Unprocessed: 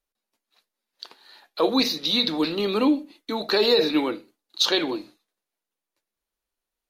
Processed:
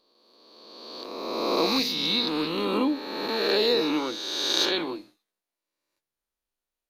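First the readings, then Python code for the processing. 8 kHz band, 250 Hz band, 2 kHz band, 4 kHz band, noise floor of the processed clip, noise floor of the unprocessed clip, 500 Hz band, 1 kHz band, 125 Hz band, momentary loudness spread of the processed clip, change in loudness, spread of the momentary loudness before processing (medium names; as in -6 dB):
+1.0 dB, -3.5 dB, -1.0 dB, -1.0 dB, under -85 dBFS, under -85 dBFS, -2.5 dB, 0.0 dB, -1.5 dB, 14 LU, -2.5 dB, 12 LU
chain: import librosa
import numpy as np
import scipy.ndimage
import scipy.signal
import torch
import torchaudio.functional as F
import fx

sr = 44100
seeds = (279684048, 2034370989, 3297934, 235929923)

y = fx.spec_swells(x, sr, rise_s=1.91)
y = F.gain(torch.from_numpy(y), -7.0).numpy()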